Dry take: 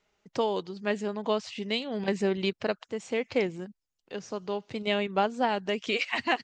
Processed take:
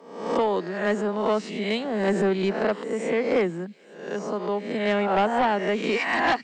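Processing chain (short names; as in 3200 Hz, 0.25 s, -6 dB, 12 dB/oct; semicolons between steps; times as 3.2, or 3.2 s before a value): spectral swells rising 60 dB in 0.71 s; Chebyshev high-pass 150 Hz, order 10; band shelf 4000 Hz -8.5 dB; sine folder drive 7 dB, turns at -11 dBFS; on a send: thin delay 0.432 s, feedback 77%, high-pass 3000 Hz, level -23 dB; on the sum: gain -5 dB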